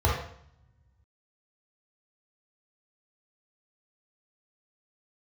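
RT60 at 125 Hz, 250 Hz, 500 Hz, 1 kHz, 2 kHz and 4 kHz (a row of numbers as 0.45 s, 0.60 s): 1.9 s, 1.4 s, 0.60 s, 0.65 s, 0.65 s, 0.60 s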